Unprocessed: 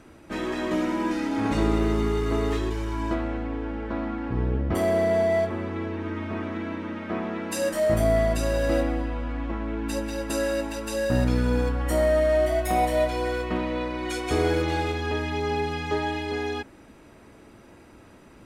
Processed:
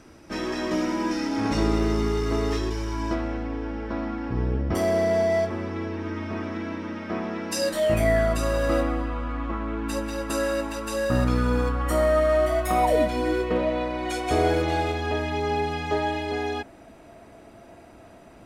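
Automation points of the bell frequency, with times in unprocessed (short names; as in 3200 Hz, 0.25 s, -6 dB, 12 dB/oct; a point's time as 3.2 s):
bell +14.5 dB 0.24 oct
7.58 s 5400 Hz
8.34 s 1200 Hz
12.82 s 1200 Hz
13.06 s 200 Hz
13.72 s 680 Hz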